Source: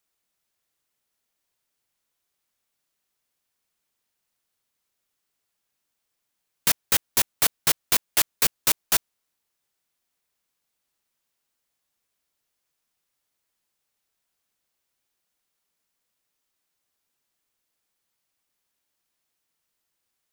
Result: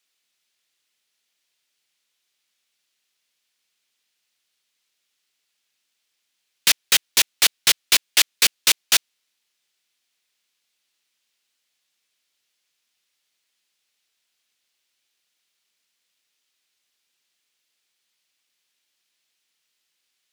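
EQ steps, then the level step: frequency weighting D; -1.0 dB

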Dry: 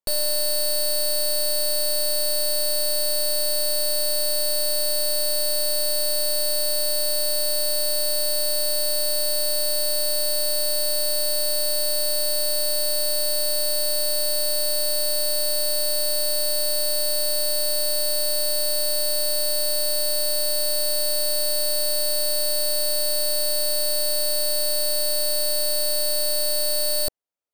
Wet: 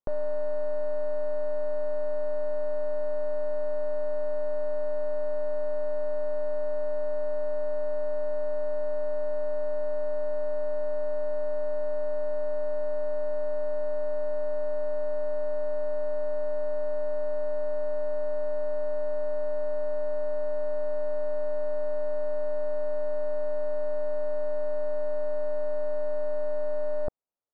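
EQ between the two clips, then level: low-pass 1.3 kHz 24 dB/octave; 0.0 dB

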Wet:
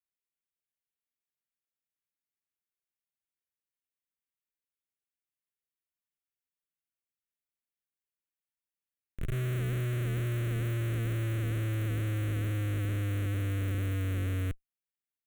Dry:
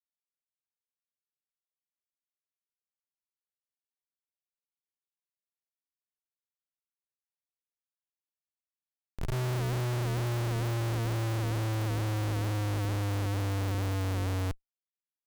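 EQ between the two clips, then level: static phaser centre 2.1 kHz, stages 4; 0.0 dB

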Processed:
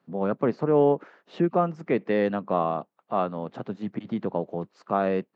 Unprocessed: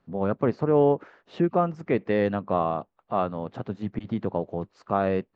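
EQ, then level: high-pass 140 Hz 24 dB/octave; 0.0 dB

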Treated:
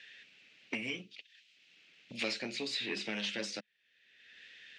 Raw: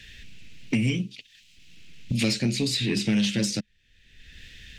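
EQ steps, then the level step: band-pass 670–5500 Hz; treble shelf 2.4 kHz -10.5 dB; 0.0 dB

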